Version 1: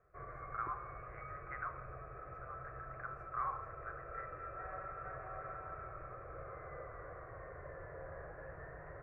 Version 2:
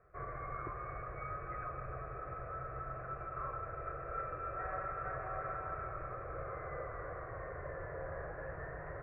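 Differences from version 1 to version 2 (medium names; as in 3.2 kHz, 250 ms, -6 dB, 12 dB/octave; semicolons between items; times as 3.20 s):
speech -8.0 dB; background +5.5 dB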